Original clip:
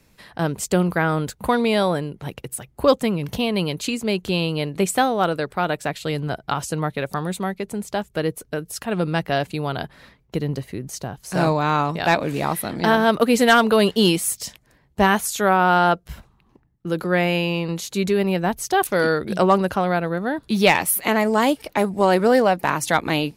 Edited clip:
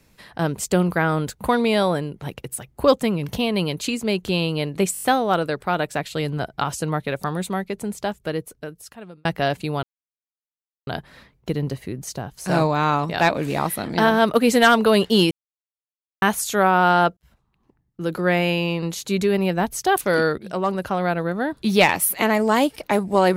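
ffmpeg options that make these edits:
-filter_complex "[0:a]asplit=12[a][b][c][d][e][f][g][h][i][j][k][l];[a]atrim=end=4.952[m];[b]atrim=start=4.928:end=4.952[n];[c]atrim=start=4.928:end=4.952[o];[d]atrim=start=4.928:end=4.952[p];[e]atrim=start=4.928:end=4.952[q];[f]atrim=start=4.928:end=9.15,asetpts=PTS-STARTPTS,afade=t=out:st=2.922:d=1.3[r];[g]atrim=start=9.15:end=9.73,asetpts=PTS-STARTPTS,afade=t=in:d=0.004:c=hsin,afade=t=out:st=0.576:d=0.004:c=hsin,apad=pad_dur=1.04[s];[h]atrim=start=9.73:end=14.17,asetpts=PTS-STARTPTS,afade=t=in:d=0.004:c=hsin,afade=t=out:st=4.436:d=0.004:c=hsin[t];[i]atrim=start=14.17:end=15.08,asetpts=PTS-STARTPTS,volume=0[u];[j]atrim=start=15.08:end=16.03,asetpts=PTS-STARTPTS,afade=t=in:d=0.004:c=hsin,afade=t=out:st=0.946:d=0.004:c=hsin[v];[k]atrim=start=16.03:end=19.24,asetpts=PTS-STARTPTS,afade=t=in:d=1.05,afade=t=out:st=3.206:d=0.004:c=hsin:silence=0.211349[w];[l]atrim=start=19.24,asetpts=PTS-STARTPTS,afade=t=in:d=0.81:silence=0.211349[x];[m][n]acrossfade=d=0.004:c1=hsin:c2=hsin[y];[y][o]acrossfade=d=0.004:c1=hsin:c2=hsin[z];[z][p]acrossfade=d=0.004:c1=hsin:c2=hsin[aa];[aa][q]acrossfade=d=0.004:c1=hsin:c2=hsin[ab];[r][s][t][u][v][w][x]concat=n=7:v=0:a=1[ac];[ab][ac]acrossfade=d=0.004:c1=hsin:c2=hsin"

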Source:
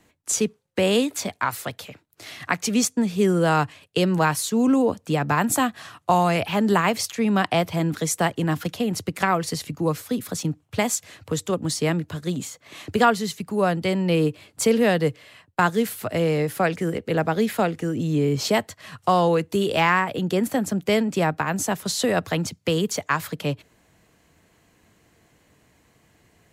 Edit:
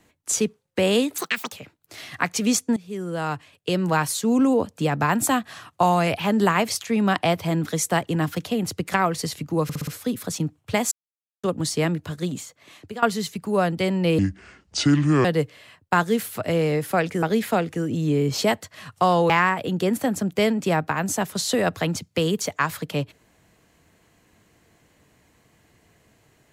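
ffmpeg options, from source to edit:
-filter_complex "[0:a]asplit=15[a][b][c][d][e][f][g][h][i][j][k][l][m][n][o];[a]atrim=end=1.184[p];[b]atrim=start=1.18:end=1.81,asetpts=PTS-STARTPTS,asetrate=80703,aresample=44100[q];[c]atrim=start=1.806:end=3.05,asetpts=PTS-STARTPTS,afade=t=out:st=1.24:d=0.004:c=hsin:silence=0.133352[r];[d]atrim=start=3.05:end=9.982,asetpts=PTS-STARTPTS,afade=t=in:d=1.39:silence=0.133352[s];[e]atrim=start=9.918:end=9.982[t];[f]atrim=start=9.918:end=9.982[u];[g]atrim=start=9.918:end=9.982[v];[h]atrim=start=9.918:end=10.96,asetpts=PTS-STARTPTS,afade=t=out:st=1.038:d=0.004:c=hsin[w];[i]atrim=start=10.96:end=11.48,asetpts=PTS-STARTPTS,volume=0[x];[j]atrim=start=11.48:end=13.07,asetpts=PTS-STARTPTS,afade=t=in:d=0.004:c=hsin,afade=t=out:st=0.77:d=0.82:silence=0.112202[y];[k]atrim=start=13.07:end=14.234,asetpts=PTS-STARTPTS,afade=t=in:d=0.004:c=hsin:silence=0.112202[z];[l]atrim=start=14.23:end=14.91,asetpts=PTS-STARTPTS,asetrate=28224,aresample=44100,atrim=end_sample=46856,asetpts=PTS-STARTPTS[aa];[m]atrim=start=14.906:end=16.892[ab];[n]atrim=start=17.288:end=19.362[ac];[o]atrim=start=19.798[ad];[p][q]acrossfade=d=0.004:c1=hsin:c2=hsin[ae];[r][s]concat=n=2:v=0:a=1[af];[ae][af]acrossfade=d=0.004:c1=hsin:c2=hsin[ag];[ag][t]acrossfade=d=0.004:c1=hsin:c2=hsin[ah];[ah][u]acrossfade=d=0.004:c1=hsin:c2=hsin[ai];[ai][v]acrossfade=d=0.004:c1=hsin:c2=hsin[aj];[w][x][y][z]concat=n=4:v=0:a=1[ak];[aj][ak]acrossfade=d=0.004:c1=hsin:c2=hsin[al];[al][aa]acrossfade=d=0.004:c1=hsin:c2=hsin[am];[am][ab]acrossfade=d=0.004:c1=hsin:c2=hsin[an];[an][ac]acrossfade=d=0.004:c1=hsin:c2=hsin[ao];[ao][ad]acrossfade=d=0.004:c1=hsin:c2=hsin"

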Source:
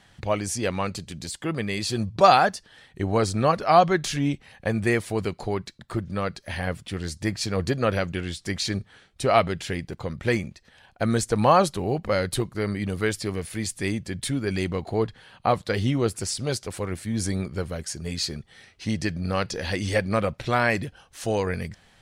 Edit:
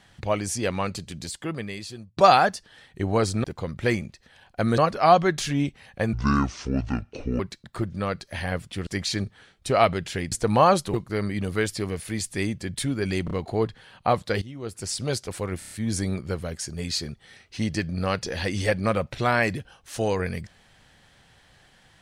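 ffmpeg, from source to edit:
-filter_complex "[0:a]asplit=16[a][b][c][d][e][f][g][h][i][j][k][l][m][n][o][p];[a]atrim=end=2.17,asetpts=PTS-STARTPTS,afade=t=out:st=1.24:d=0.93[q];[b]atrim=start=2.17:end=3.442,asetpts=PTS-STARTPTS,afade=t=in:d=0.004:c=hsin[r];[c]atrim=start=9.858:end=11.202[s];[d]atrim=start=3.438:end=4.794[t];[e]atrim=start=4.79:end=5.55,asetpts=PTS-STARTPTS,asetrate=26460,aresample=44100[u];[f]atrim=start=5.546:end=7.022[v];[g]atrim=start=8.408:end=9.862[w];[h]atrim=start=11.198:end=11.822[x];[i]atrim=start=12.388:end=14.732[y];[j]atrim=start=14.698:end=14.732[z];[k]atrim=start=14.698:end=15.81,asetpts=PTS-STARTPTS,afade=t=out:st=1.108:d=0.004:c=hsin:silence=0.125893[aa];[l]atrim=start=15.81:end=17.012,asetpts=PTS-STARTPTS,afade=t=in:d=0.53:c=qua:silence=0.125893[ab];[m]atrim=start=16.978:end=17.012[ac];[n]atrim=start=16.978:end=17.012[ad];[o]atrim=start=16.978:end=17.012[ae];[p]atrim=start=16.978[af];[q][r]concat=n=2:v=0:a=1[ag];[ag][s]acrossfade=d=0.004:c1=hsin:c2=hsin[ah];[ah][t]acrossfade=d=0.004:c1=hsin:c2=hsin[ai];[ai][u]acrossfade=d=0.004:c1=hsin:c2=hsin[aj];[aj][v]acrossfade=d=0.004:c1=hsin:c2=hsin[ak];[ak][w]acrossfade=d=0.004:c1=hsin:c2=hsin[al];[al][x]acrossfade=d=0.004:c1=hsin:c2=hsin[am];[am][y]acrossfade=d=0.004:c1=hsin:c2=hsin[an];[an][z]acrossfade=d=0.004:c1=hsin:c2=hsin[ao];[aa][ab]concat=n=2:v=0:a=1[ap];[ao][ap]acrossfade=d=0.004:c1=hsin:c2=hsin[aq];[aq][ac]acrossfade=d=0.004:c1=hsin:c2=hsin[ar];[ar][ad]acrossfade=d=0.004:c1=hsin:c2=hsin[as];[as][ae]acrossfade=d=0.004:c1=hsin:c2=hsin[at];[at][af]acrossfade=d=0.004:c1=hsin:c2=hsin"

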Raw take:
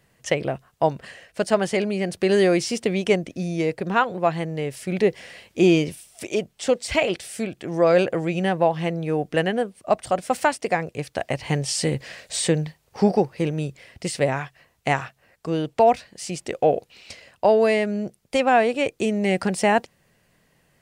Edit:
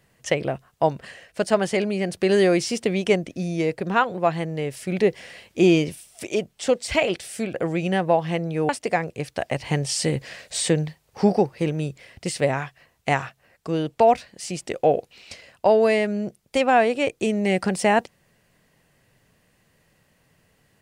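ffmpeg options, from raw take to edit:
-filter_complex "[0:a]asplit=3[a][b][c];[a]atrim=end=7.542[d];[b]atrim=start=8.058:end=9.212[e];[c]atrim=start=10.478[f];[d][e]acrossfade=d=0.004:c1=hsin:c2=hsin[g];[g][f]acrossfade=d=0.004:c1=hsin:c2=hsin"

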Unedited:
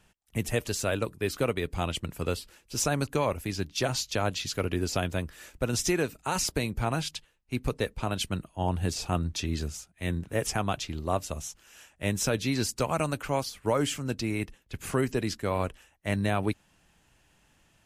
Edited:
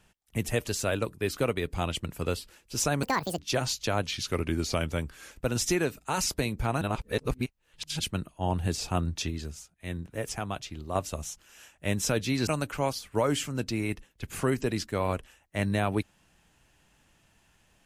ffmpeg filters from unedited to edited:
-filter_complex "[0:a]asplit=10[a][b][c][d][e][f][g][h][i][j];[a]atrim=end=3.034[k];[b]atrim=start=3.03:end=3.66,asetpts=PTS-STARTPTS,asetrate=79380,aresample=44100[l];[c]atrim=start=3.656:end=4.314[m];[d]atrim=start=4.31:end=5.49,asetpts=PTS-STARTPTS,asetrate=40572,aresample=44100,atrim=end_sample=56563,asetpts=PTS-STARTPTS[n];[e]atrim=start=5.486:end=6.992[o];[f]atrim=start=6.988:end=8.172,asetpts=PTS-STARTPTS,areverse[p];[g]atrim=start=8.168:end=9.482[q];[h]atrim=start=9.478:end=11.132,asetpts=PTS-STARTPTS,volume=-5dB[r];[i]atrim=start=11.128:end=12.652[s];[j]atrim=start=12.978[t];[k][l]acrossfade=d=0.004:c1=hsin:c2=hsin[u];[u][m]acrossfade=d=0.004:c1=hsin:c2=hsin[v];[v][n]acrossfade=d=0.004:c1=hsin:c2=hsin[w];[w][o]acrossfade=d=0.004:c1=hsin:c2=hsin[x];[x][p]acrossfade=d=0.004:c1=hsin:c2=hsin[y];[y][q]acrossfade=d=0.004:c1=hsin:c2=hsin[z];[z][r]acrossfade=d=0.004:c1=hsin:c2=hsin[aa];[aa][s]acrossfade=d=0.004:c1=hsin:c2=hsin[ab];[ab][t]acrossfade=d=0.004:c1=hsin:c2=hsin"

